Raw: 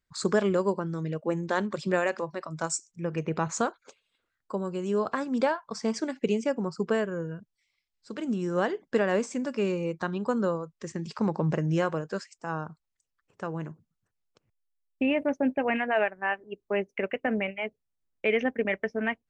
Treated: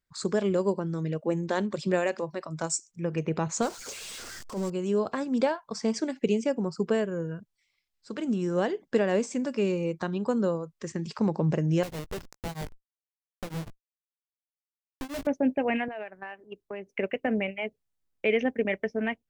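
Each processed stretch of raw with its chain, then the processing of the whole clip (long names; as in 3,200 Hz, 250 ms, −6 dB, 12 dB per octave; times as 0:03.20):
0:03.62–0:04.70: converter with a step at zero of −38.5 dBFS + flat-topped bell 6,300 Hz +9 dB 1.1 octaves + transient designer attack −11 dB, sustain −2 dB
0:11.83–0:15.27: comparator with hysteresis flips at −37 dBFS + double-tracking delay 18 ms −10 dB + tremolo along a rectified sine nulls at 6.3 Hz
0:15.88–0:16.87: downward compressor 8 to 1, threshold −34 dBFS + multiband upward and downward expander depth 70%
whole clip: dynamic equaliser 1,300 Hz, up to −7 dB, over −43 dBFS, Q 1.2; automatic gain control gain up to 4 dB; level −2.5 dB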